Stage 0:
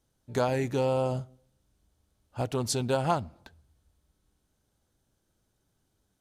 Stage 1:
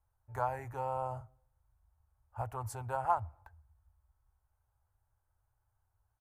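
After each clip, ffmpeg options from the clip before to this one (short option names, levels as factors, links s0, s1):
-af "firequalizer=gain_entry='entry(110,0);entry(150,-29);entry(860,1);entry(3600,-29);entry(7500,-16);entry(13000,-7)':delay=0.05:min_phase=1"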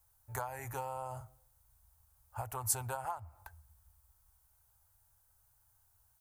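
-af "acompressor=threshold=0.0112:ratio=20,crystalizer=i=5.5:c=0,volume=1.26"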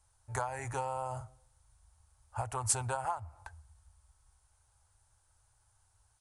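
-filter_complex "[0:a]asplit=2[s0][s1];[s1]aeval=exprs='(mod(10.6*val(0)+1,2)-1)/10.6':c=same,volume=0.447[s2];[s0][s2]amix=inputs=2:normalize=0,aresample=22050,aresample=44100,volume=1.12"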